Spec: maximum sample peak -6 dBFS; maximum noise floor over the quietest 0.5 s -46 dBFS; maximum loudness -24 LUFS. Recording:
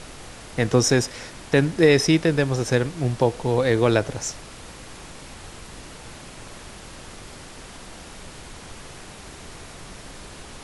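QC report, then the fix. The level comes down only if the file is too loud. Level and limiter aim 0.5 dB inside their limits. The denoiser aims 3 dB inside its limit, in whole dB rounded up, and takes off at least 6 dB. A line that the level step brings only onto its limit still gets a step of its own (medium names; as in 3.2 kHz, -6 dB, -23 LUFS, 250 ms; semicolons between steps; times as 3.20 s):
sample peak -5.0 dBFS: fail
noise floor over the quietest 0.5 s -41 dBFS: fail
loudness -21.0 LUFS: fail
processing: noise reduction 6 dB, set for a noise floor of -41 dBFS; trim -3.5 dB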